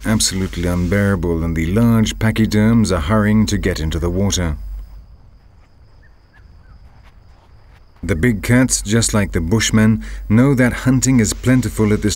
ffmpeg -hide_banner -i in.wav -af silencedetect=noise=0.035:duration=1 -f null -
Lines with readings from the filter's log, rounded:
silence_start: 4.93
silence_end: 8.03 | silence_duration: 3.10